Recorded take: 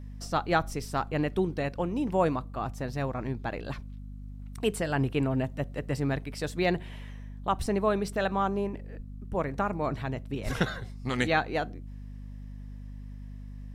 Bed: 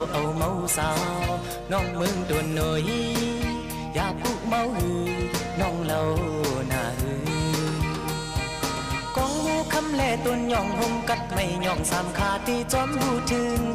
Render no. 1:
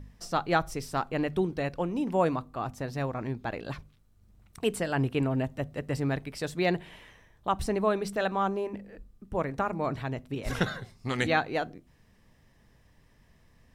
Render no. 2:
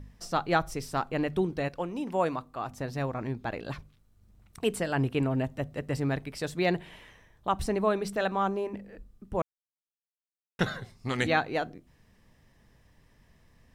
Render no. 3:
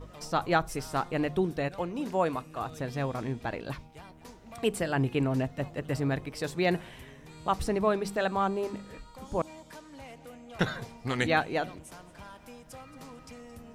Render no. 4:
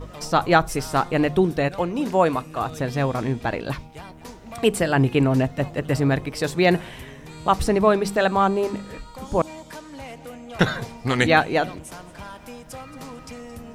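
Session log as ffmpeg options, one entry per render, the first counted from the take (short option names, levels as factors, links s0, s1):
-af "bandreject=f=50:t=h:w=4,bandreject=f=100:t=h:w=4,bandreject=f=150:t=h:w=4,bandreject=f=200:t=h:w=4,bandreject=f=250:t=h:w=4"
-filter_complex "[0:a]asettb=1/sr,asplit=3[s0][s1][s2];[s0]atrim=end=1.684[s3];[s1]atrim=start=1.68:end=2.71,asetpts=PTS-STARTPTS,afade=t=in:d=0.004:c=qsin,afade=t=out:st=1.026:d=0.004:c=qsin,lowshelf=f=340:g=-7[s4];[s2]atrim=start=2.706[s5];[s3][s4]acrossfade=d=0.004:c1=hsin:c2=qsin[s6];[s6][s5]acrossfade=d=0.004:c1=qsin:c2=hsin,asplit=3[s7][s8][s9];[s7]atrim=end=9.42,asetpts=PTS-STARTPTS,afade=t=out:st=9.416:d=0.004:c=hsin[s10];[s8]atrim=start=9.42:end=10.59,asetpts=PTS-STARTPTS,volume=0[s11];[s9]atrim=start=10.59,asetpts=PTS-STARTPTS,afade=t=in:d=0.004:c=hsin[s12];[s10][s11][s12]concat=n=3:v=0:a=1"
-filter_complex "[1:a]volume=0.0708[s0];[0:a][s0]amix=inputs=2:normalize=0"
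-af "volume=2.82"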